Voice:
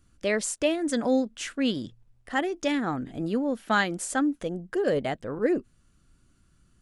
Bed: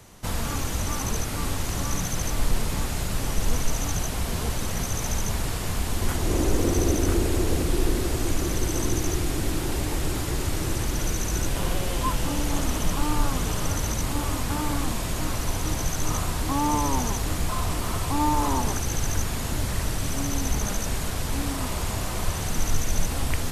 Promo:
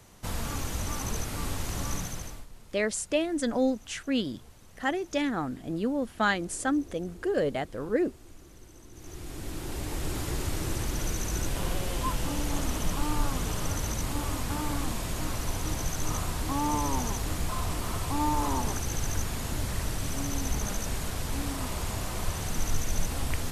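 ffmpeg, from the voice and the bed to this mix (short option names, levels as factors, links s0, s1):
-filter_complex "[0:a]adelay=2500,volume=0.794[s0];[1:a]volume=6.68,afade=t=out:st=1.92:d=0.54:silence=0.0891251,afade=t=in:st=8.92:d=1.33:silence=0.0841395[s1];[s0][s1]amix=inputs=2:normalize=0"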